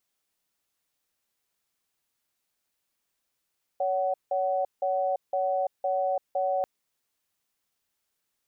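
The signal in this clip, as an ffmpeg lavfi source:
ffmpeg -f lavfi -i "aevalsrc='0.0473*(sin(2*PI*562*t)+sin(2*PI*749*t))*clip(min(mod(t,0.51),0.34-mod(t,0.51))/0.005,0,1)':duration=2.84:sample_rate=44100" out.wav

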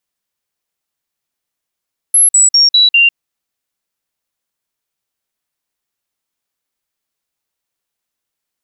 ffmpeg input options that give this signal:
ffmpeg -f lavfi -i "aevalsrc='0.562*clip(min(mod(t,0.2),0.15-mod(t,0.2))/0.005,0,1)*sin(2*PI*11100*pow(2,-floor(t/0.2)/2)*mod(t,0.2))':duration=1:sample_rate=44100" out.wav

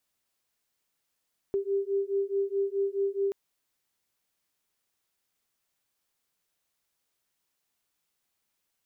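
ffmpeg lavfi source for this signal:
ffmpeg -f lavfi -i "aevalsrc='0.0355*(sin(2*PI*393*t)+sin(2*PI*397.7*t))':duration=1.78:sample_rate=44100" out.wav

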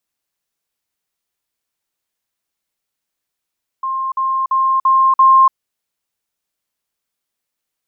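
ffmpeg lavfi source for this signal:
ffmpeg -f lavfi -i "aevalsrc='pow(10,(-17.5+3*floor(t/0.34))/20)*sin(2*PI*1060*t)*clip(min(mod(t,0.34),0.29-mod(t,0.34))/0.005,0,1)':duration=1.7:sample_rate=44100" out.wav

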